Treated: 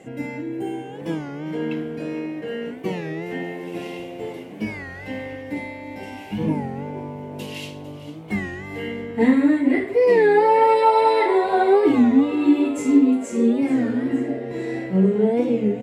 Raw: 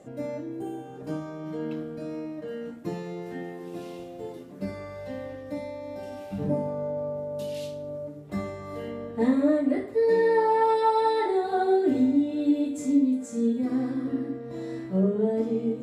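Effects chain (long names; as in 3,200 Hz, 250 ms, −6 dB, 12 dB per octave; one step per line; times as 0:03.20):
flat-topped bell 2,300 Hz +9.5 dB 1 octave
notch comb filter 600 Hz
on a send: echo with shifted repeats 452 ms, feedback 55%, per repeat +100 Hz, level −15 dB
on the sum: wow of a warped record 33 1/3 rpm, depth 160 cents
level +6.5 dB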